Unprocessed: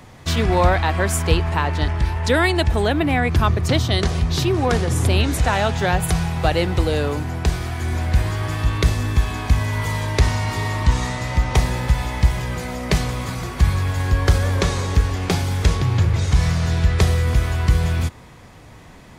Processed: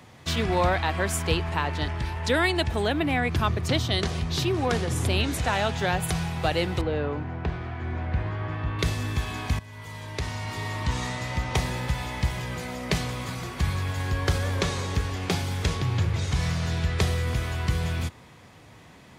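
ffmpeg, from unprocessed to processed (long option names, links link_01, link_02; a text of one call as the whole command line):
ffmpeg -i in.wav -filter_complex "[0:a]asettb=1/sr,asplit=3[link_01][link_02][link_03];[link_01]atrim=end=6.814[link_04];[link_02]atrim=start=6.81:end=8.79,asetpts=PTS-STARTPTS,afade=type=in:duration=0.004:curve=qsin,afade=type=out:start_time=1.976:duration=0.004:curve=qsin,lowpass=1900[link_05];[link_03]atrim=start=8.786[link_06];[link_04][link_05]acrossfade=duration=0.004:curve1=hsin:curve2=qsin[link_07];[link_07][link_06]acrossfade=duration=0.004:curve1=qsin:curve2=hsin,asplit=2[link_08][link_09];[link_08]atrim=end=9.59,asetpts=PTS-STARTPTS,afade=type=out:start_time=9.586:duration=0.004:curve=hsin:silence=0.133352[link_10];[link_09]atrim=start=9.59,asetpts=PTS-STARTPTS,afade=type=in:duration=1.44:silence=0.133352[link_11];[link_10][link_11]concat=n=2:v=0:a=1,highpass=79,equalizer=frequency=3100:width=1.1:gain=3,volume=-6dB" out.wav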